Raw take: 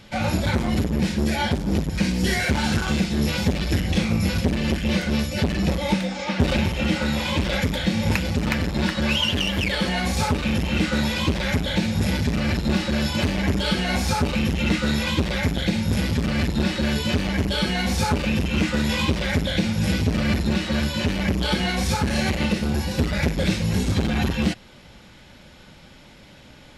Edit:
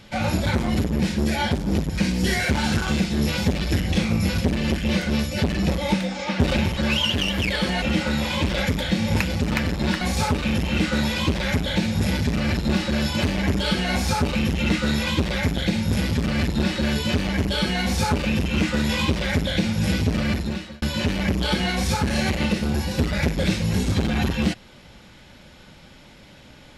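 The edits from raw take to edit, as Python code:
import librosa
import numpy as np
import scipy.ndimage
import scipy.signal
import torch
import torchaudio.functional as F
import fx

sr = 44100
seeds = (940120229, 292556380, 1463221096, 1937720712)

y = fx.edit(x, sr, fx.move(start_s=8.96, length_s=1.05, to_s=6.77),
    fx.fade_out_span(start_s=19.99, length_s=0.83, curve='qsin'), tone=tone)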